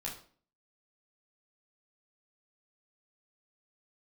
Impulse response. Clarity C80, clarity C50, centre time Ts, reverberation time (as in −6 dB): 12.5 dB, 8.0 dB, 26 ms, 0.45 s